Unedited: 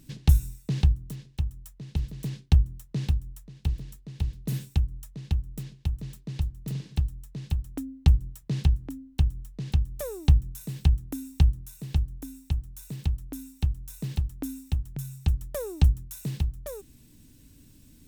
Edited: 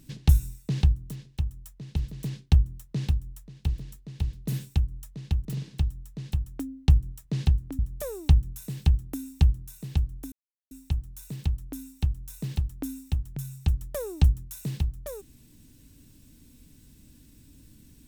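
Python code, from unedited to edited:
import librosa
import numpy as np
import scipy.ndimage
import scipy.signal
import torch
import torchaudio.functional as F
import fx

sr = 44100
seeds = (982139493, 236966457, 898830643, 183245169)

y = fx.edit(x, sr, fx.cut(start_s=5.45, length_s=1.18),
    fx.cut(start_s=8.97, length_s=0.81),
    fx.insert_silence(at_s=12.31, length_s=0.39), tone=tone)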